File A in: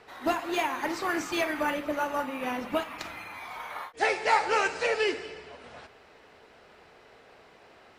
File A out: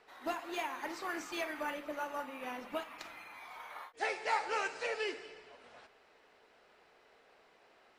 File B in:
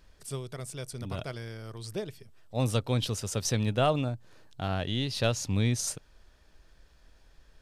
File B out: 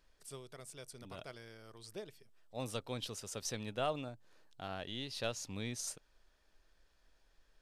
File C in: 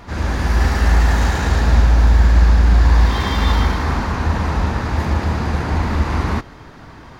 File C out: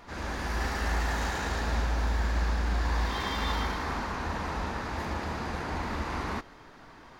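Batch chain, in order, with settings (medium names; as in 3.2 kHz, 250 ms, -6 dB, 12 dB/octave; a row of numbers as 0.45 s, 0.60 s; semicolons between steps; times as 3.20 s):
peaking EQ 89 Hz -10.5 dB 2.4 oct; trim -9 dB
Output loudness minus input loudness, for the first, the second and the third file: -9.5 LU, -11.5 LU, -14.5 LU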